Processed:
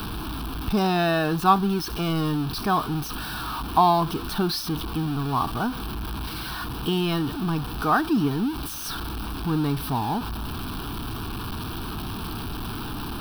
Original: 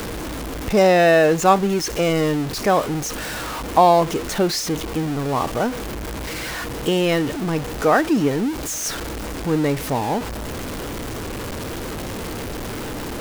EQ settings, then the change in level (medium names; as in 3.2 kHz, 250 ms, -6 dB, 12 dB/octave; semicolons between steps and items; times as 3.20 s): dynamic bell 2.7 kHz, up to -4 dB, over -39 dBFS, Q 2.9; static phaser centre 2 kHz, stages 6; 0.0 dB